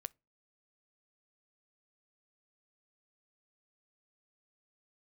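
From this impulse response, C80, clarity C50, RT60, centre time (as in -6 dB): 39.5 dB, 30.0 dB, 0.30 s, 1 ms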